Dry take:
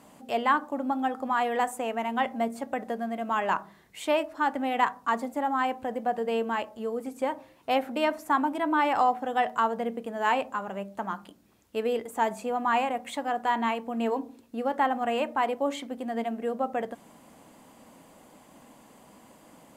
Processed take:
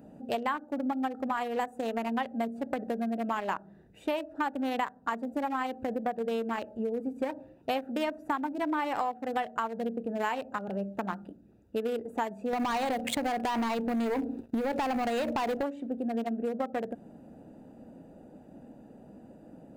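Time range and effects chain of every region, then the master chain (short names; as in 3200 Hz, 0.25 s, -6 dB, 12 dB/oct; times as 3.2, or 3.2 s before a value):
12.53–15.63 compressor, threshold -29 dBFS + sample leveller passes 3
whole clip: Wiener smoothing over 41 samples; high shelf 9200 Hz +8.5 dB; compressor 6:1, threshold -35 dBFS; gain +6.5 dB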